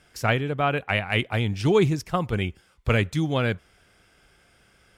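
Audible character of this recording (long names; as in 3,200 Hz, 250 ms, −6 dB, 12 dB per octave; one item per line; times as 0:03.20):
background noise floor −61 dBFS
spectral slope −5.0 dB per octave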